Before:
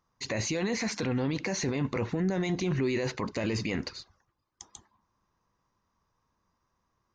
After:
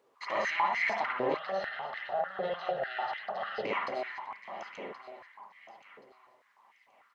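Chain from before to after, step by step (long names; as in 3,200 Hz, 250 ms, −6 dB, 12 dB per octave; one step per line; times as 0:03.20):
lower of the sound and its delayed copy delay 0.98 ms
high-frequency loss of the air 170 metres
downsampling to 22,050 Hz
high-shelf EQ 5,700 Hz −7.5 dB
repeating echo 1,076 ms, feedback 28%, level −13 dB
convolution reverb, pre-delay 47 ms, DRR −3.5 dB
brickwall limiter −21 dBFS, peak gain reduction 7.5 dB
0:01.37–0:03.65: phaser with its sweep stopped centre 1,500 Hz, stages 8
background noise brown −61 dBFS
high-pass on a step sequencer 6.7 Hz 460–2,100 Hz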